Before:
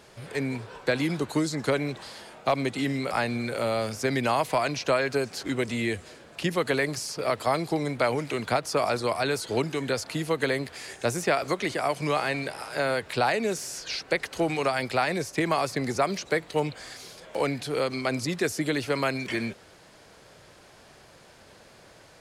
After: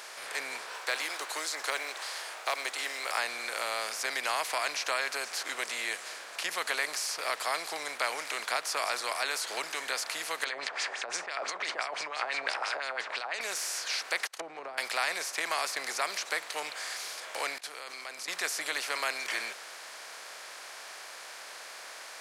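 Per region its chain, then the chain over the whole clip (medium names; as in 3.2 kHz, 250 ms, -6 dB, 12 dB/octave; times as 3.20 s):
0.72–3.18 s: high-pass 320 Hz 24 dB/octave + companded quantiser 8-bit
10.44–13.41 s: steep low-pass 9.3 kHz + compressor with a negative ratio -32 dBFS + LFO low-pass sine 5.9 Hz 630–6200 Hz
14.27–14.78 s: gate -37 dBFS, range -50 dB + low-pass that closes with the level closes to 400 Hz, closed at -23 dBFS + tape noise reduction on one side only encoder only
17.58–18.28 s: expander -33 dBFS + level held to a coarse grid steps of 21 dB
whole clip: spectral levelling over time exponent 0.6; high-pass 1 kHz 12 dB/octave; treble shelf 4.7 kHz +5 dB; trim -5.5 dB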